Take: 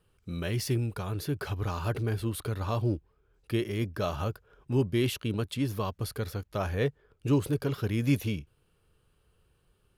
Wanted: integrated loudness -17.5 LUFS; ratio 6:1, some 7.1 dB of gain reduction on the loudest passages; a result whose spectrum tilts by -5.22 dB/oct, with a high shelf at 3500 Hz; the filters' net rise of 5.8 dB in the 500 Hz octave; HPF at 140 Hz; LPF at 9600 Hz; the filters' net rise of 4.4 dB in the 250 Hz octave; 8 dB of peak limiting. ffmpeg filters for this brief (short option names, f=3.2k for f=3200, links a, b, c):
-af "highpass=140,lowpass=9.6k,equalizer=f=250:t=o:g=4,equalizer=f=500:t=o:g=6,highshelf=f=3.5k:g=7.5,acompressor=threshold=-24dB:ratio=6,volume=16.5dB,alimiter=limit=-6.5dB:level=0:latency=1"